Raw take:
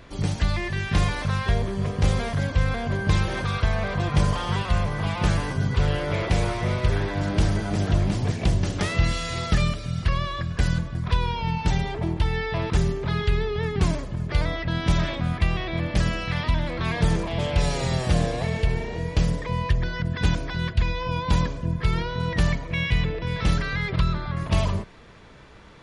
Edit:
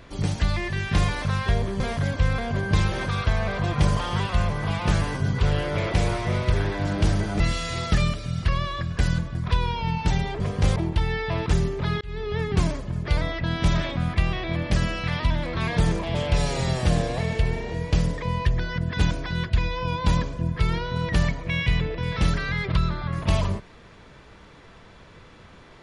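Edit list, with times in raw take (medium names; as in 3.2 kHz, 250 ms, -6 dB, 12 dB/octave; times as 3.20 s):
1.80–2.16 s: move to 12.00 s
7.76–9.00 s: delete
13.25–13.59 s: fade in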